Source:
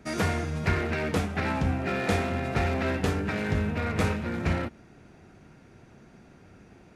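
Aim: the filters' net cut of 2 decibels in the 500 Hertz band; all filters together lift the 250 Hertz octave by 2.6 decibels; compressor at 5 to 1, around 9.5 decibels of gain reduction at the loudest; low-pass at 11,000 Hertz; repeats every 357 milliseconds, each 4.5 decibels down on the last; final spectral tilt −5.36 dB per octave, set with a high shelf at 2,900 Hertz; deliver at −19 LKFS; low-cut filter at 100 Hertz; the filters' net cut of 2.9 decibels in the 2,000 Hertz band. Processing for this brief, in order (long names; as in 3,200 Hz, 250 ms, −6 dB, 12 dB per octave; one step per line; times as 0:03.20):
high-pass filter 100 Hz
low-pass filter 11,000 Hz
parametric band 250 Hz +4.5 dB
parametric band 500 Hz −4 dB
parametric band 2,000 Hz −6 dB
high-shelf EQ 2,900 Hz +6.5 dB
downward compressor 5 to 1, threshold −33 dBFS
repeating echo 357 ms, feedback 60%, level −4.5 dB
level +16 dB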